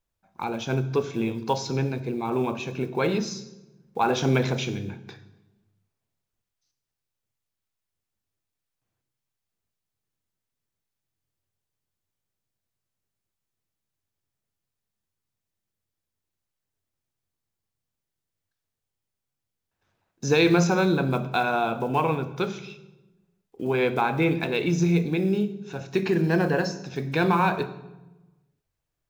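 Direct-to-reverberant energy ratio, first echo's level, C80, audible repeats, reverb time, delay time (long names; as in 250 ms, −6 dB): 11.0 dB, no echo audible, 16.0 dB, no echo audible, 1.1 s, no echo audible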